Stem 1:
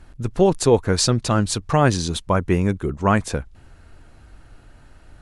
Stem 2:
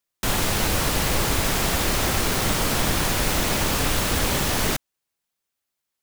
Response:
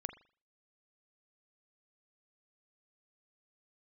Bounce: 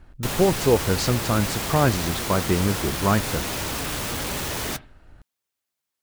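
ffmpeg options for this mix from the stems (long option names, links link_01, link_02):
-filter_complex "[0:a]highshelf=frequency=5000:gain=-10,volume=-3dB[link_01];[1:a]highpass=47,asoftclip=type=hard:threshold=-24.5dB,flanger=delay=2:depth=6.4:regen=-59:speed=1.1:shape=sinusoidal,volume=-0.5dB,asplit=2[link_02][link_03];[link_03]volume=-4dB[link_04];[2:a]atrim=start_sample=2205[link_05];[link_04][link_05]afir=irnorm=-1:irlink=0[link_06];[link_01][link_02][link_06]amix=inputs=3:normalize=0"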